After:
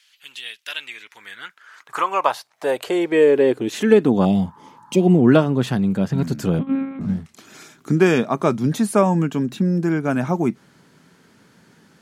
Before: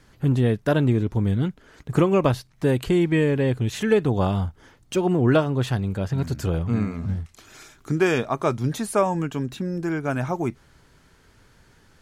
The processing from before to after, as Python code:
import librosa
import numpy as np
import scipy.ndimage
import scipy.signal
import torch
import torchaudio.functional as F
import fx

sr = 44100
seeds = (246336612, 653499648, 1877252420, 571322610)

y = fx.spec_repair(x, sr, seeds[0], start_s=4.28, length_s=0.89, low_hz=850.0, high_hz=1900.0, source='after')
y = fx.lpc_monotone(y, sr, seeds[1], pitch_hz=270.0, order=8, at=(6.59, 7.01))
y = fx.filter_sweep_highpass(y, sr, from_hz=2900.0, to_hz=190.0, start_s=0.61, end_s=4.35, q=2.5)
y = y * librosa.db_to_amplitude(2.5)